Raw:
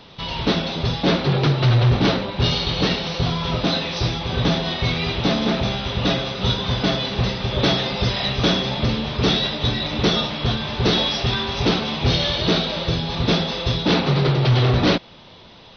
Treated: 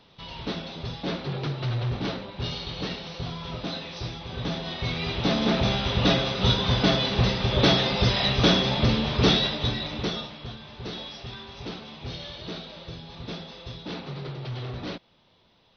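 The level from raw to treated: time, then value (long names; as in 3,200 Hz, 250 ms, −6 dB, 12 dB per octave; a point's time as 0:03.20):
0:04.35 −12 dB
0:05.71 −1 dB
0:09.27 −1 dB
0:09.91 −8 dB
0:10.52 −17.5 dB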